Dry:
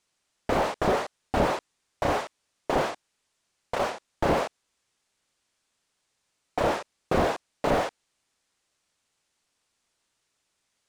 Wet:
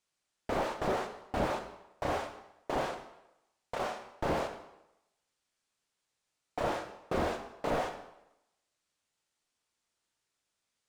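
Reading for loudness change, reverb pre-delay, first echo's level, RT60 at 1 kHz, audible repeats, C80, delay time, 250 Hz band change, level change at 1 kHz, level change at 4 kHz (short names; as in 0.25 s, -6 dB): -7.5 dB, 11 ms, none, 0.90 s, none, 11.0 dB, none, -7.5 dB, -7.0 dB, -7.5 dB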